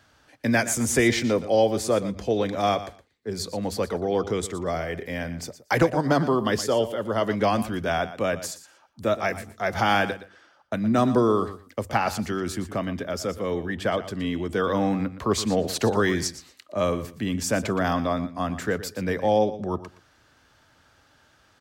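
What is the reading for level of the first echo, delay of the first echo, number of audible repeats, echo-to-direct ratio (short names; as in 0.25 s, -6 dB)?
-14.0 dB, 0.118 s, 2, -14.0 dB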